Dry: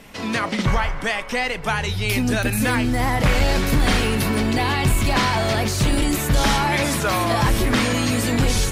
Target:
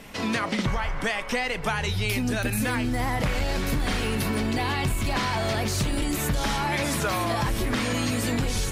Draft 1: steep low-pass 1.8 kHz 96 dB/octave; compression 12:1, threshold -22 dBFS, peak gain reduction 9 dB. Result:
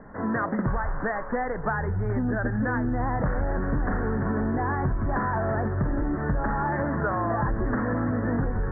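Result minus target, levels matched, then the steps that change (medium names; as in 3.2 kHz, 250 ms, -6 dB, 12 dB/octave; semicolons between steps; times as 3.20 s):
2 kHz band -2.5 dB
remove: steep low-pass 1.8 kHz 96 dB/octave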